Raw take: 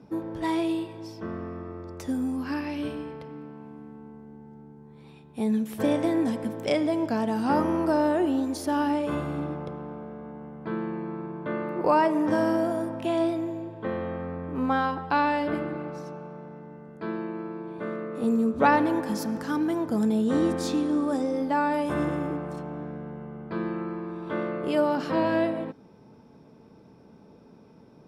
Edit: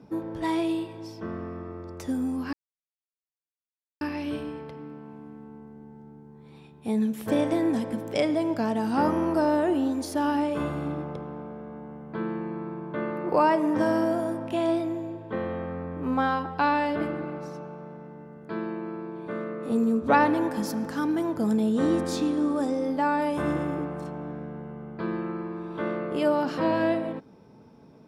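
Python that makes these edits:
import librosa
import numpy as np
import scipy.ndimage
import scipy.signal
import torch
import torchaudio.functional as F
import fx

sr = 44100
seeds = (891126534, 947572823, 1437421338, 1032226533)

y = fx.edit(x, sr, fx.insert_silence(at_s=2.53, length_s=1.48), tone=tone)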